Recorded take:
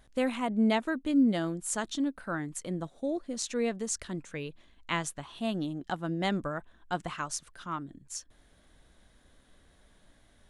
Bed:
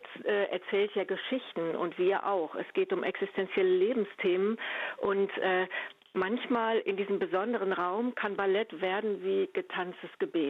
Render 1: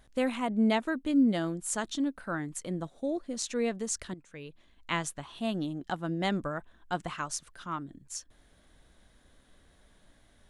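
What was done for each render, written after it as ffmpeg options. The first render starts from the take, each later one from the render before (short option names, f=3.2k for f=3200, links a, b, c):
-filter_complex "[0:a]asplit=2[a][b];[a]atrim=end=4.14,asetpts=PTS-STARTPTS,afade=t=out:st=4.136:d=0.004:c=hsin:silence=0.188365[c];[b]atrim=start=4.14,asetpts=PTS-STARTPTS,afade=t=in:d=0.78:silence=0.188365[d];[c][d]concat=n=2:v=0:a=1"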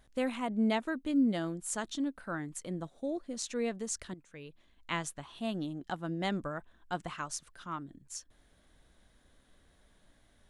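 -af "volume=-3.5dB"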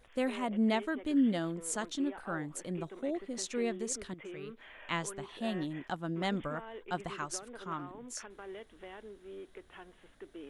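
-filter_complex "[1:a]volume=-17.5dB[a];[0:a][a]amix=inputs=2:normalize=0"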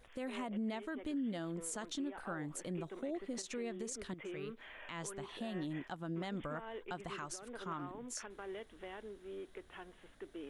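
-af "acompressor=threshold=-34dB:ratio=10,alimiter=level_in=8dB:limit=-24dB:level=0:latency=1:release=98,volume=-8dB"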